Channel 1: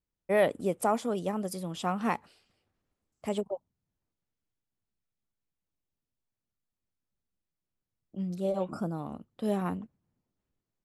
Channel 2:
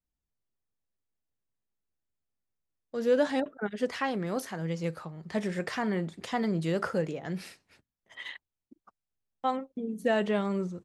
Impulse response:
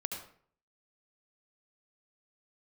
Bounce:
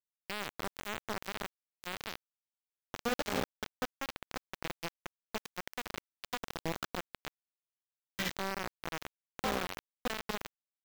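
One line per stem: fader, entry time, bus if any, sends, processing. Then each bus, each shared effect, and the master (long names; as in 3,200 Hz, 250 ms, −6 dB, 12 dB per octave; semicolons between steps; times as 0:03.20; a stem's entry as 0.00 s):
−2.0 dB, 0.00 s, no send, no echo send, spectrum averaged block by block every 100 ms; brickwall limiter −26.5 dBFS, peak gain reduction 10 dB
+2.0 dB, 0.00 s, no send, echo send −10 dB, downward compressor 3 to 1, threshold −40 dBFS, peak gain reduction 14.5 dB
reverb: not used
echo: repeating echo 74 ms, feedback 44%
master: bit reduction 5 bits; parametric band 9,800 Hz −7.5 dB 0.83 octaves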